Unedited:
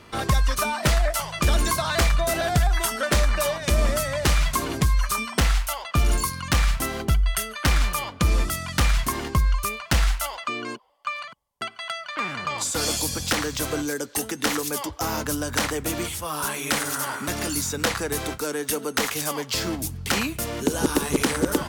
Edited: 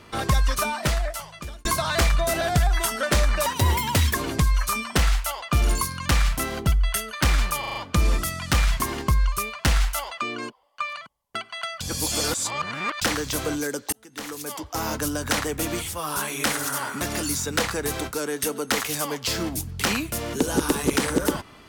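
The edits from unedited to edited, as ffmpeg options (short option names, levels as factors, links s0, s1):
-filter_complex "[0:a]asplit=11[s0][s1][s2][s3][s4][s5][s6][s7][s8][s9][s10];[s0]atrim=end=1.65,asetpts=PTS-STARTPTS,afade=t=out:st=0.58:d=1.07[s11];[s1]atrim=start=1.65:end=3.464,asetpts=PTS-STARTPTS,afade=t=in:d=0.004:c=hsin[s12];[s2]atrim=start=3.46:end=4.57,asetpts=PTS-STARTPTS,asetrate=71442,aresample=44100[s13];[s3]atrim=start=4.566:end=8.062[s14];[s4]atrim=start=8.018:end=8.062[s15];[s5]atrim=start=8.018:end=8.062[s16];[s6]atrim=start=8.018:end=8.062[s17];[s7]atrim=start=8.018:end=12.072[s18];[s8]atrim=start=12.068:end=13.282,asetpts=PTS-STARTPTS,areverse[s19];[s9]atrim=start=13.278:end=14.19,asetpts=PTS-STARTPTS,afade=t=out:st=0.908:d=0.004:c=hsin[s20];[s10]atrim=start=14.19,asetpts=PTS-STARTPTS,afade=t=in:d=1.01[s21];[s11][s12]concat=n=2:v=0:a=1[s22];[s22][s13]acrossfade=d=0.004:c1=hsin:c2=hsin[s23];[s23][s14]acrossfade=d=0.004:c1=hsin:c2=hsin[s24];[s24][s15]acrossfade=d=0.004:c1=hsin:c2=hsin[s25];[s25][s16]acrossfade=d=0.004:c1=hsin:c2=hsin[s26];[s26][s17]acrossfade=d=0.004:c1=hsin:c2=hsin[s27];[s27][s18]acrossfade=d=0.004:c1=hsin:c2=hsin[s28];[s28][s19]acrossfade=d=0.004:c1=hsin:c2=hsin[s29];[s20][s21]concat=n=2:v=0:a=1[s30];[s29][s30]acrossfade=d=0.004:c1=hsin:c2=hsin"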